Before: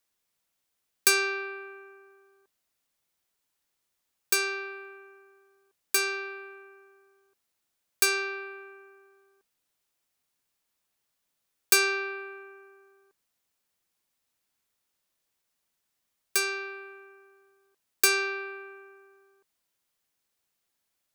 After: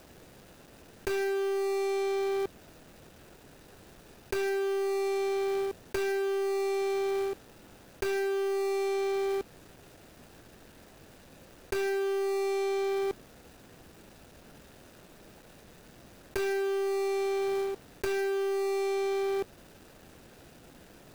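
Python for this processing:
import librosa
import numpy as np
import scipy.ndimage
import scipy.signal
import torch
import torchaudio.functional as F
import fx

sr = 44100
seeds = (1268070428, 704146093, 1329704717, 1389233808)

y = scipy.signal.medfilt(x, 41)
y = fx.env_flatten(y, sr, amount_pct=100)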